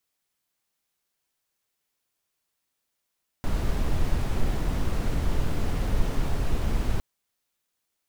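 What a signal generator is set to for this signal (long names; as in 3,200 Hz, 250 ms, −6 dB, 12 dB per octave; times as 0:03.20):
noise brown, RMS −23 dBFS 3.56 s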